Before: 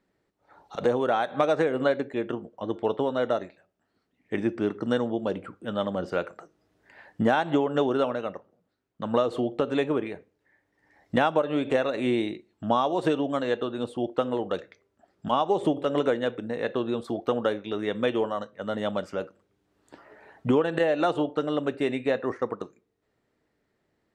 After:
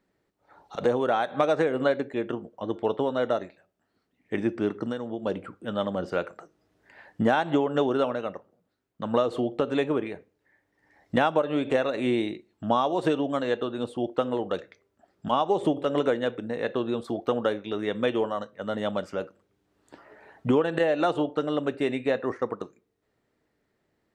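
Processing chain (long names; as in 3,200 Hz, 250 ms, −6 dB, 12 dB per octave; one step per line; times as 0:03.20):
0:04.83–0:05.26: downward compressor 6 to 1, threshold −28 dBFS, peak gain reduction 9 dB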